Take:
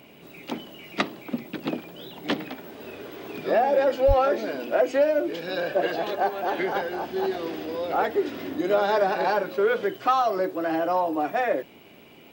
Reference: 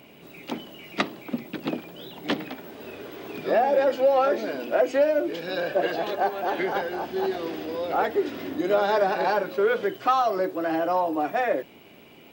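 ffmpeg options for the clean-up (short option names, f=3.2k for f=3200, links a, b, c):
-filter_complex "[0:a]asplit=3[a][b][c];[a]afade=t=out:st=4.07:d=0.02[d];[b]highpass=f=140:w=0.5412,highpass=f=140:w=1.3066,afade=t=in:st=4.07:d=0.02,afade=t=out:st=4.19:d=0.02[e];[c]afade=t=in:st=4.19:d=0.02[f];[d][e][f]amix=inputs=3:normalize=0"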